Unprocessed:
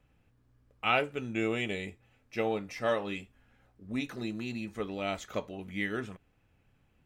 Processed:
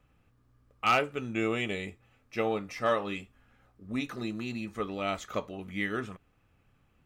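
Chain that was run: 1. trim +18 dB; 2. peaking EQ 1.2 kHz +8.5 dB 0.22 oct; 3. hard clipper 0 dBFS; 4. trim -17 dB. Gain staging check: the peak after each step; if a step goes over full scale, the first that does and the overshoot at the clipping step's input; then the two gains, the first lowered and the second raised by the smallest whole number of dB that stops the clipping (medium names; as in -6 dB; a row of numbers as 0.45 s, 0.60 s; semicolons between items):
+5.0 dBFS, +6.5 dBFS, 0.0 dBFS, -17.0 dBFS; step 1, 6.5 dB; step 1 +11 dB, step 4 -10 dB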